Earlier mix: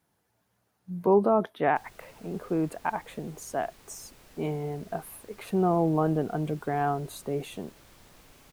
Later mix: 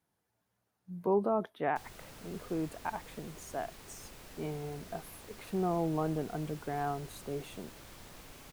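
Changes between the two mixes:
speech −7.5 dB
background +3.5 dB

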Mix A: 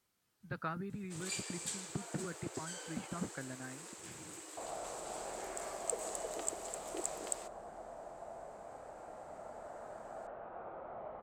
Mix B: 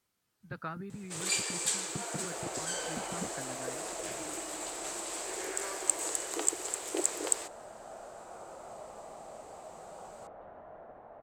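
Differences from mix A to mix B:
first sound +10.0 dB
second sound: entry −2.25 s

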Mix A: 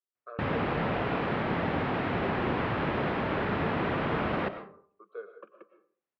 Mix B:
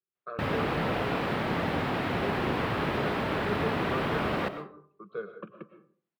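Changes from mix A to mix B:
speech: remove four-pole ladder high-pass 340 Hz, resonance 25%
master: remove low-pass filter 2,900 Hz 12 dB per octave

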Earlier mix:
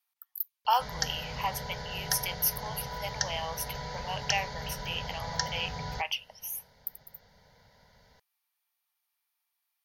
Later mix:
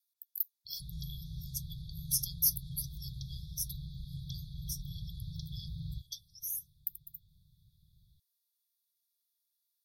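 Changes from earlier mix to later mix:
background: add low-pass filter 3,000 Hz 24 dB per octave
master: add linear-phase brick-wall band-stop 180–3,300 Hz

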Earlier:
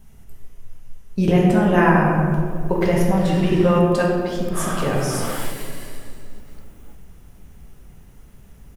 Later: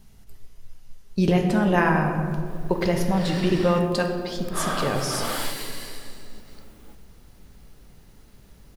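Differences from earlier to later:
speech: send −7.5 dB
master: add parametric band 4,400 Hz +9.5 dB 0.63 octaves

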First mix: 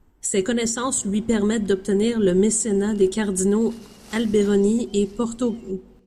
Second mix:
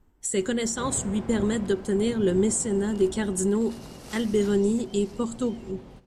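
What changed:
speech −4.5 dB
first sound +11.0 dB

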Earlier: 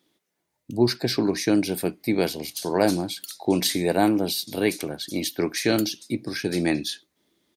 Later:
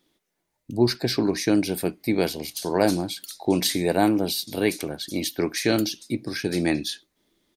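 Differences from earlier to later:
background −3.0 dB
master: remove high-pass filter 84 Hz

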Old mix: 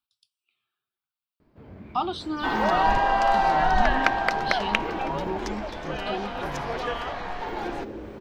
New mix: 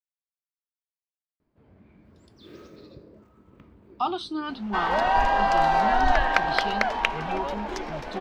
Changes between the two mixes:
speech: entry +2.05 s
first sound −11.5 dB
second sound: entry +2.30 s

